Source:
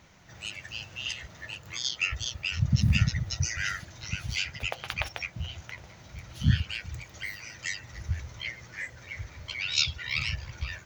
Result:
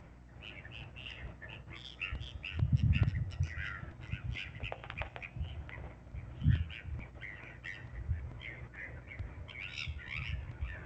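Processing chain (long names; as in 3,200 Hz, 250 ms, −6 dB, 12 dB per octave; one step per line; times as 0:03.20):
adaptive Wiener filter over 9 samples
in parallel at −3 dB: downward compressor 8 to 1, threshold −43 dBFS, peak gain reduction 25 dB
on the sum: parametric band 190 Hz −9.5 dB 0.37 octaves
flanger 0.32 Hz, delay 9.9 ms, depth 9.3 ms, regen +88%
noise gate −49 dBFS, range −9 dB
reversed playback
upward compression, threshold −37 dBFS
reversed playback
drawn EQ curve 110 Hz 0 dB, 160 Hz +4 dB, 1,400 Hz −4 dB
mains hum 60 Hz, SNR 18 dB
Savitzky-Golay smoothing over 25 samples
regular buffer underruns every 0.44 s, samples 128, repeat, from 0:00.83
level −1.5 dB
G.722 64 kbit/s 16,000 Hz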